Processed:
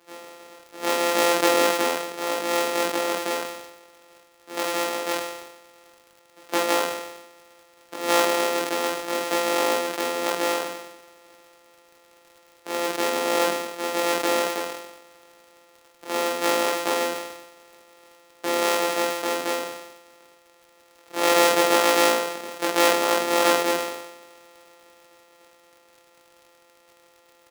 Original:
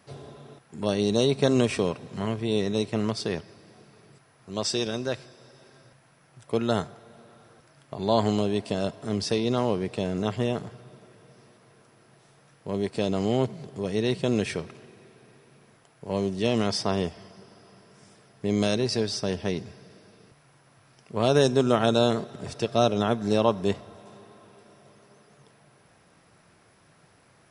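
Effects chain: sample sorter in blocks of 256 samples; HPF 290 Hz 24 dB/oct; on a send: early reflections 21 ms -3 dB, 48 ms -3.5 dB; on the sum: crackle 77/s -42 dBFS; sustainer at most 55 dB/s; gain +1.5 dB

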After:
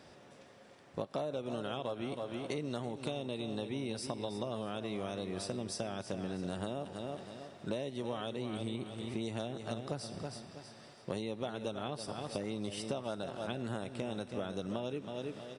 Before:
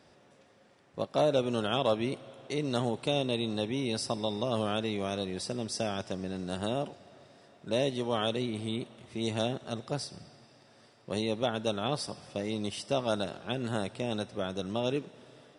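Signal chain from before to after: feedback echo 0.322 s, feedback 31%, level -11 dB; compressor 12:1, threshold -37 dBFS, peak gain reduction 16 dB; dynamic EQ 4800 Hz, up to -4 dB, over -57 dBFS, Q 0.81; gain +3.5 dB

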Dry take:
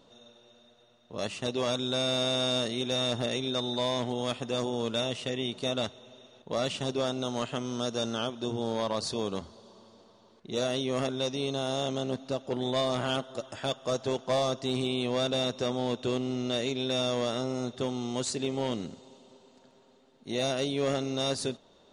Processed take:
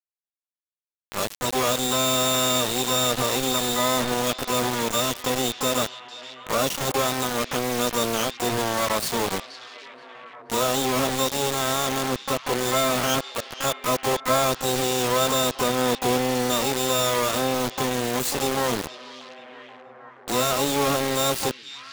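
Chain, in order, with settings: harmoniser +12 st -2 dB; bit-crush 5-bit; delay with a stepping band-pass 0.477 s, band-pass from 3700 Hz, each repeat -0.7 oct, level -10 dB; gain +4 dB

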